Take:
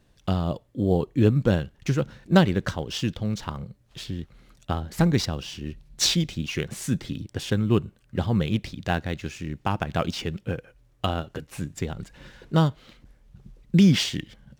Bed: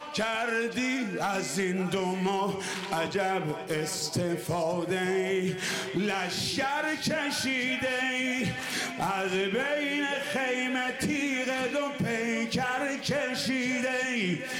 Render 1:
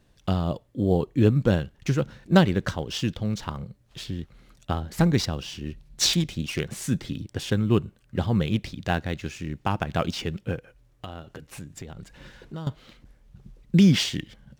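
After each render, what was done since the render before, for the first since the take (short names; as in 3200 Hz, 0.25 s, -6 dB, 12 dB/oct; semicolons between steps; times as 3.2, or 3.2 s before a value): 6.13–6.6 self-modulated delay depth 0.14 ms; 10.58–12.67 compressor 3:1, threshold -37 dBFS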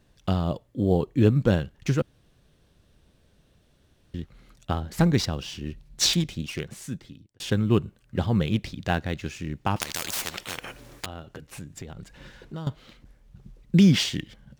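2.02–4.14 room tone; 6.11–7.4 fade out; 9.76–11.06 spectral compressor 10:1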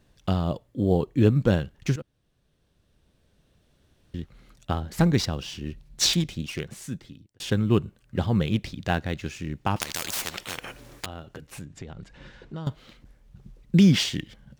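1.96–4.16 fade in, from -14 dB; 11.65–12.66 air absorption 70 m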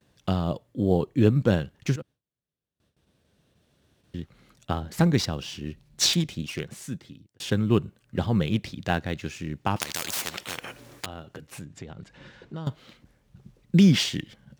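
gate with hold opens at -54 dBFS; HPF 84 Hz 12 dB/oct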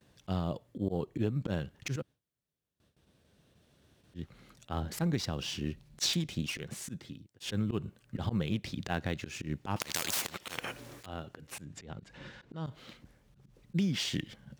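auto swell 0.11 s; compressor 16:1, threshold -27 dBFS, peak gain reduction 15 dB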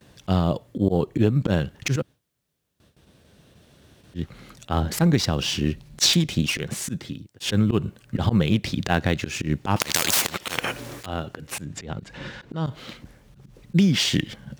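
gain +12 dB; limiter -1 dBFS, peak gain reduction 1.5 dB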